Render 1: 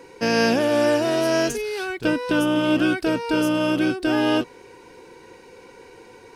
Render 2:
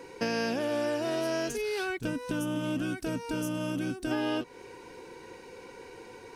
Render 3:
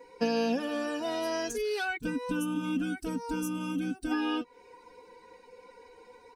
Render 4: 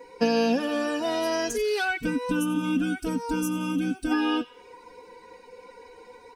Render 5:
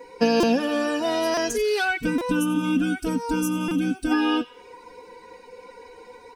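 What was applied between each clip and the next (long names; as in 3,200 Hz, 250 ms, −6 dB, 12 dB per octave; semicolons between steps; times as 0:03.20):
gain on a spectral selection 0:01.98–0:04.12, 280–5,500 Hz −9 dB; downward compressor 4 to 1, threshold −27 dBFS, peak gain reduction 10.5 dB; level −1.5 dB
spectral dynamics exaggerated over time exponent 1.5; comb filter 4.1 ms, depth 88%
delay with a high-pass on its return 89 ms, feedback 43%, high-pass 1,700 Hz, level −15.5 dB; level +5.5 dB
buffer that repeats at 0:00.40/0:01.34/0:02.18/0:03.68, samples 128, times 10; level +3 dB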